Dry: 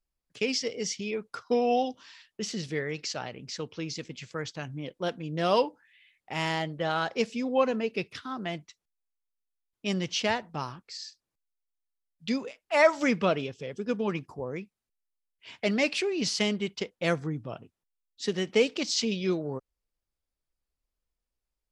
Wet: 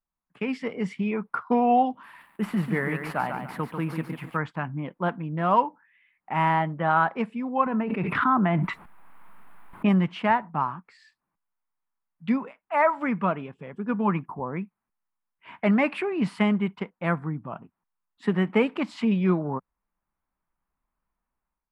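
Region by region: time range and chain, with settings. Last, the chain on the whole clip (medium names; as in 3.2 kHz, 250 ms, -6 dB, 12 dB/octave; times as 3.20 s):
2.03–4.37 s: CVSD coder 64 kbps + bit-crushed delay 143 ms, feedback 35%, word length 9-bit, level -6 dB
7.66–9.89 s: treble shelf 4.9 kHz -10.5 dB + level flattener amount 100%
whole clip: FFT filter 110 Hz 0 dB, 180 Hz +11 dB, 490 Hz -1 dB, 980 Hz +15 dB, 2.3 kHz +2 dB, 6.1 kHz -27 dB, 9.3 kHz -5 dB; level rider gain up to 10 dB; trim -8.5 dB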